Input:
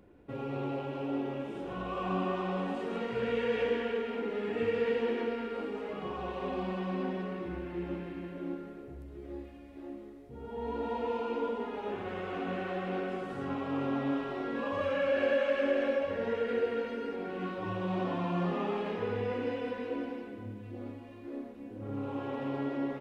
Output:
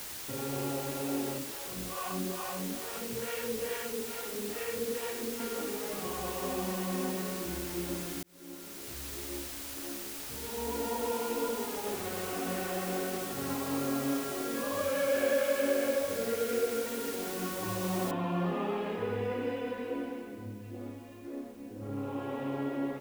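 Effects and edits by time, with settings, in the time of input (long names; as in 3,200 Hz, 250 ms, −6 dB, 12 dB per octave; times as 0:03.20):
0:01.38–0:05.40: two-band tremolo in antiphase 2.3 Hz, depth 100%, crossover 500 Hz
0:08.23–0:09.08: fade in
0:13.77–0:16.86: notch comb filter 920 Hz
0:18.11: noise floor change −42 dB −65 dB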